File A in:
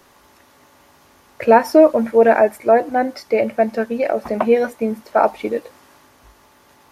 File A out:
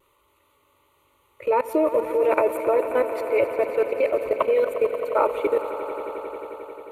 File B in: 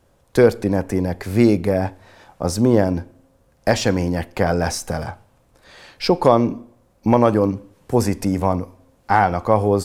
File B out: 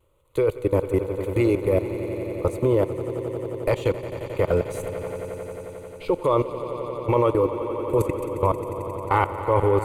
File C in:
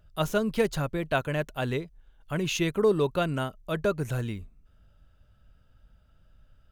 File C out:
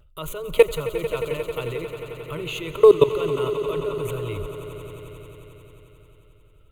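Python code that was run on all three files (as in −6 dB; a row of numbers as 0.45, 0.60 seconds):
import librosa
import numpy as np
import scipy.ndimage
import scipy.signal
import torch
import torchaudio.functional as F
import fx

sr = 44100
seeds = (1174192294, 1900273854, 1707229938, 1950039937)

p1 = fx.fixed_phaser(x, sr, hz=1100.0, stages=8)
p2 = fx.level_steps(p1, sr, step_db=23)
p3 = fx.vibrato(p2, sr, rate_hz=0.51, depth_cents=16.0)
p4 = p3 + fx.echo_swell(p3, sr, ms=89, loudest=5, wet_db=-14.5, dry=0)
y = p4 * 10.0 ** (-24 / 20.0) / np.sqrt(np.mean(np.square(p4)))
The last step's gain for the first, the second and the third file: +4.0, +4.0, +14.5 decibels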